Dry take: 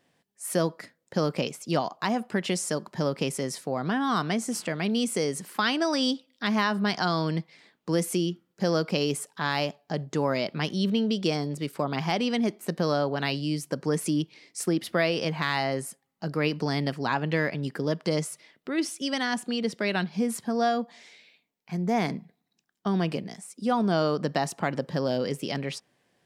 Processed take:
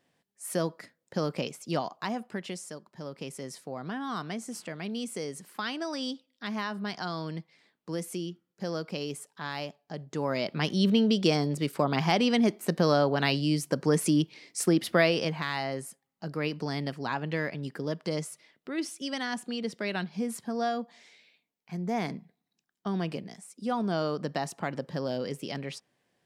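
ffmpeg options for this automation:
ffmpeg -i in.wav -af "volume=14dB,afade=type=out:start_time=1.83:duration=1.03:silence=0.251189,afade=type=in:start_time=2.86:duration=0.66:silence=0.421697,afade=type=in:start_time=10.03:duration=0.84:silence=0.298538,afade=type=out:start_time=15.01:duration=0.43:silence=0.446684" out.wav

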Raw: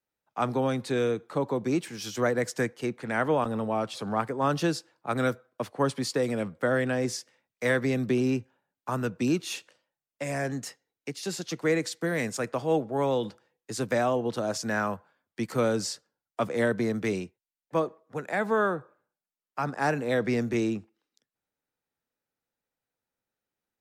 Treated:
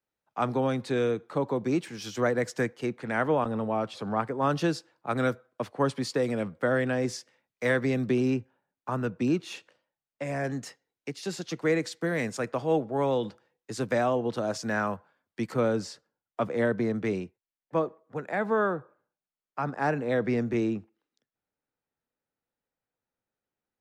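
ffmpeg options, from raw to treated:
ffmpeg -i in.wav -af "asetnsamples=nb_out_samples=441:pad=0,asendcmd='3.27 lowpass f 2900;4.43 lowpass f 4900;8.34 lowpass f 2300;10.44 lowpass f 4600;15.54 lowpass f 2100',lowpass=frequency=4900:poles=1" out.wav

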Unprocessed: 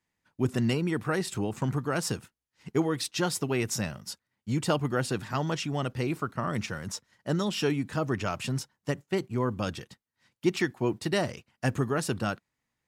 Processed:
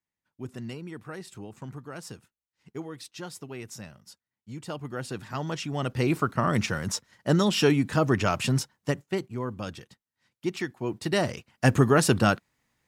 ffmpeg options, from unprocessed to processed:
ffmpeg -i in.wav -af "volume=18.5dB,afade=type=in:start_time=4.64:duration=1.11:silence=0.298538,afade=type=in:start_time=5.75:duration=0.38:silence=0.473151,afade=type=out:start_time=8.57:duration=0.77:silence=0.316228,afade=type=in:start_time=10.83:duration=1.06:silence=0.237137" out.wav

